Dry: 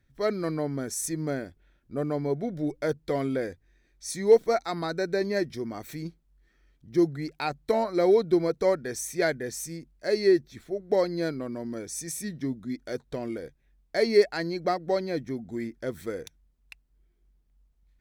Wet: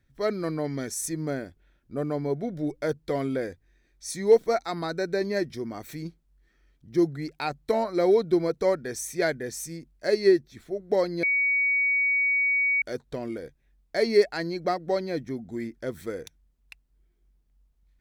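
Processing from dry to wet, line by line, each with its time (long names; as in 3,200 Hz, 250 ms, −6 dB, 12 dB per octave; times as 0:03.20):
0:00.64–0:00.89: gain on a spectral selection 1,700–7,100 Hz +8 dB
0:09.93–0:10.59: transient designer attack +3 dB, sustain −2 dB
0:11.23–0:12.82: beep over 2,250 Hz −20.5 dBFS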